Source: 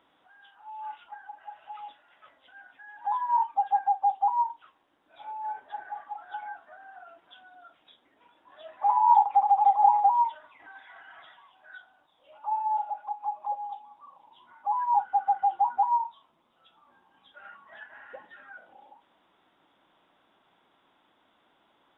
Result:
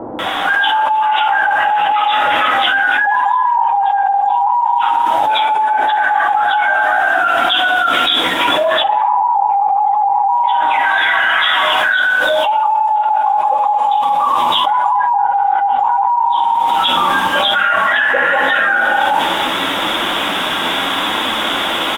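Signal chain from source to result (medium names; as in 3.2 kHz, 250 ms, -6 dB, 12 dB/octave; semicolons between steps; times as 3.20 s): treble shelf 3.2 kHz +2.5 dB, from 2.90 s +11 dB; bands offset in time lows, highs 190 ms, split 710 Hz; flange 0.8 Hz, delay 8.4 ms, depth 4.2 ms, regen -17%; low-pass that closes with the level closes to 1 kHz, closed at -22 dBFS; bass shelf 290 Hz -6 dB; reverberation RT60 1.6 s, pre-delay 3 ms, DRR 4.5 dB; loudness maximiser +19.5 dB; level flattener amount 100%; trim -8.5 dB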